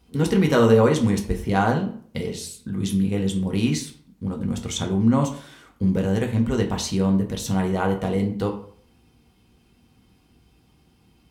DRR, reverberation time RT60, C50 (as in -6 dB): 1.5 dB, 0.55 s, 10.0 dB